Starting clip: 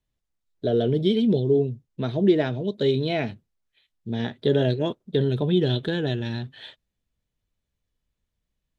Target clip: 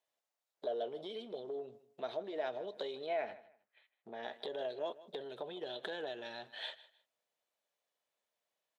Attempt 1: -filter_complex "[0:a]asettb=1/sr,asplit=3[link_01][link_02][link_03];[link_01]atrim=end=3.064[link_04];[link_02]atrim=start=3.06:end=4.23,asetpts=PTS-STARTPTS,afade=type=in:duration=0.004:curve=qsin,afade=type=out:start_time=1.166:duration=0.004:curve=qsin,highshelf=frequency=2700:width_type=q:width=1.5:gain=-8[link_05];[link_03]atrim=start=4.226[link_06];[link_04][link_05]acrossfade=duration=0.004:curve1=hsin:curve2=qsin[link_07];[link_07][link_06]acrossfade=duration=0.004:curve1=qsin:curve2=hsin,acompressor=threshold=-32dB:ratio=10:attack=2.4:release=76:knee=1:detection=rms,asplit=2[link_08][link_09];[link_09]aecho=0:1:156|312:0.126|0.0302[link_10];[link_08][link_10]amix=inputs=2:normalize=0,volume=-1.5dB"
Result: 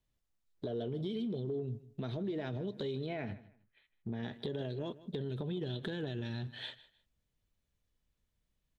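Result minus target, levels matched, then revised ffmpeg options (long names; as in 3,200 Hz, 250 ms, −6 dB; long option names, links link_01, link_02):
500 Hz band −3.0 dB
-filter_complex "[0:a]asettb=1/sr,asplit=3[link_01][link_02][link_03];[link_01]atrim=end=3.064[link_04];[link_02]atrim=start=3.06:end=4.23,asetpts=PTS-STARTPTS,afade=type=in:duration=0.004:curve=qsin,afade=type=out:start_time=1.166:duration=0.004:curve=qsin,highshelf=frequency=2700:width_type=q:width=1.5:gain=-8[link_05];[link_03]atrim=start=4.226[link_06];[link_04][link_05]acrossfade=duration=0.004:curve1=hsin:curve2=qsin[link_07];[link_07][link_06]acrossfade=duration=0.004:curve1=qsin:curve2=hsin,acompressor=threshold=-32dB:ratio=10:attack=2.4:release=76:knee=1:detection=rms,highpass=frequency=640:width_type=q:width=2.3,asplit=2[link_08][link_09];[link_09]aecho=0:1:156|312:0.126|0.0302[link_10];[link_08][link_10]amix=inputs=2:normalize=0,volume=-1.5dB"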